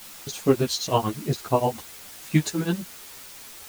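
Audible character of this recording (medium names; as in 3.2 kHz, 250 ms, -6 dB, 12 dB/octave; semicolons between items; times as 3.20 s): tremolo triangle 8.6 Hz, depth 100%; a quantiser's noise floor 8-bit, dither triangular; a shimmering, thickened sound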